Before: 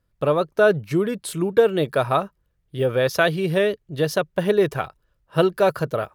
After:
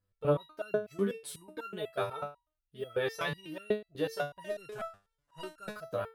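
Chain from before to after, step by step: 4.41–5.74 CVSD 64 kbps; stepped resonator 8.1 Hz 99–1400 Hz

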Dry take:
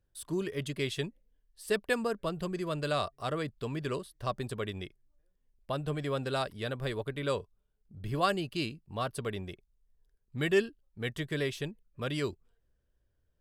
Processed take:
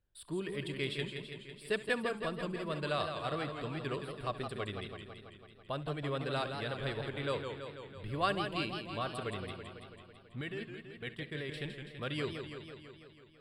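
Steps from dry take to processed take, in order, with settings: 10.41–11.54 level quantiser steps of 18 dB; running mean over 7 samples; high shelf 2200 Hz +10.5 dB; flutter echo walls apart 11.4 m, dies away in 0.22 s; warbling echo 0.165 s, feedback 68%, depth 132 cents, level -7 dB; gain -5 dB

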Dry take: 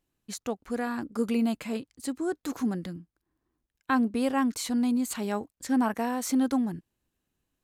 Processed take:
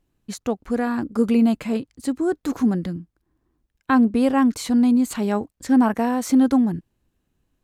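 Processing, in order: tilt -1.5 dB/oct; gain +6 dB

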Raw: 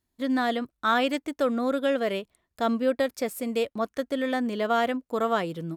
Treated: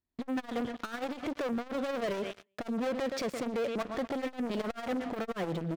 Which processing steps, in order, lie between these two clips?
Bessel low-pass 3400 Hz, order 4; compressor 6:1, threshold -26 dBFS, peak gain reduction 7.5 dB; 1.35–3.83 Bessel high-pass 160 Hz, order 6; feedback echo 0.119 s, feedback 35%, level -21 dB; sample leveller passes 5; limiter -27.5 dBFS, peak gain reduction 10.5 dB; core saturation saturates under 190 Hz

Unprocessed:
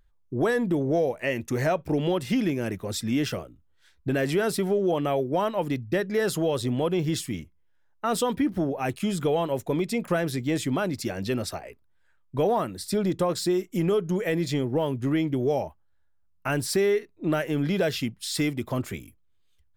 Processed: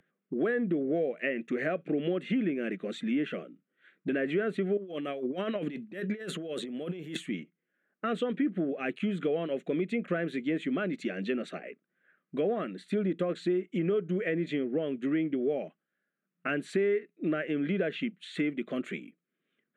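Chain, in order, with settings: fixed phaser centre 2200 Hz, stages 4; low-pass opened by the level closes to 1700 Hz, open at -23 dBFS; dynamic EQ 210 Hz, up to -3 dB, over -36 dBFS, Q 0.92; 4.77–7.17 negative-ratio compressor -34 dBFS, ratio -0.5; brick-wall FIR high-pass 160 Hz; treble ducked by the level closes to 1800 Hz, closed at -25.5 dBFS; three-band squash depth 40%

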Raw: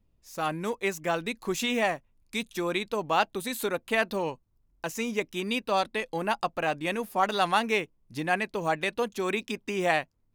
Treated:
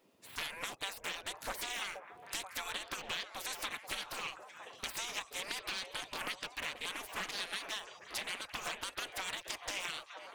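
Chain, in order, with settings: spectral gate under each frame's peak -20 dB weak; compressor 12:1, threshold -50 dBFS, peak gain reduction 19 dB; delay with a stepping band-pass 0.48 s, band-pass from 540 Hz, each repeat 0.7 oct, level -4 dB; Doppler distortion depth 0.47 ms; gain +13.5 dB

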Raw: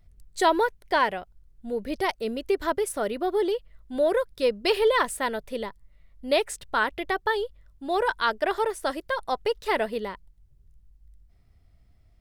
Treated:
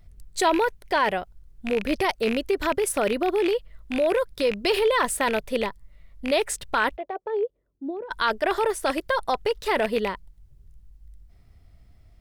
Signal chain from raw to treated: rattling part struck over -38 dBFS, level -23 dBFS; in parallel at -2 dB: negative-ratio compressor -27 dBFS, ratio -0.5; 6.96–8.1 on the sum: band-pass 700 Hz -> 240 Hz, Q 2.9; gain -1 dB

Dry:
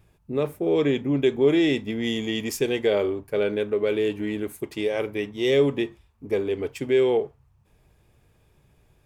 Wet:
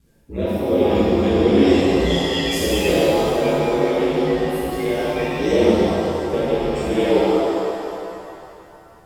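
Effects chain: bin magnitudes rounded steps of 30 dB; ring modulator 57 Hz; shimmer reverb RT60 2.5 s, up +7 st, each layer -8 dB, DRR -10.5 dB; gain -1 dB

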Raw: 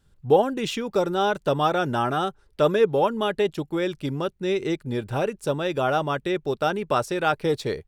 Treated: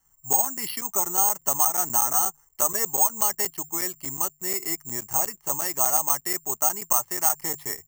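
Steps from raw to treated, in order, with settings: three-band isolator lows -16 dB, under 450 Hz, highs -23 dB, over 2500 Hz; notches 50/100/150 Hz; comb 1 ms, depth 86%; compressor 6:1, threshold -23 dBFS, peak gain reduction 8 dB; careless resampling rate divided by 6×, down filtered, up zero stuff; crackling interface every 0.12 s, samples 256, zero, from 0.33; gain -2 dB

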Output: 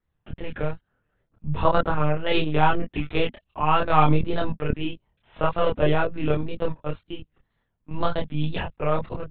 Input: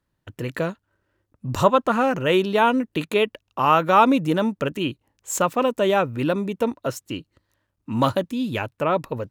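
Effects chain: monotone LPC vocoder at 8 kHz 160 Hz; wow and flutter 110 cents; chorus voices 6, 0.74 Hz, delay 27 ms, depth 1.2 ms

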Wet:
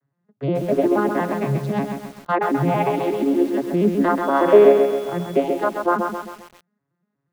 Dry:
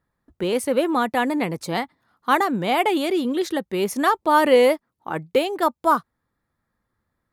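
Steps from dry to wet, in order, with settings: arpeggiated vocoder major triad, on C#3, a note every 0.119 s; treble ducked by the level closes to 2700 Hz, closed at -20.5 dBFS; 4.22–5.33 whine 3400 Hz -48 dBFS; lo-fi delay 0.133 s, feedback 55%, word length 7-bit, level -5 dB; gain +1.5 dB

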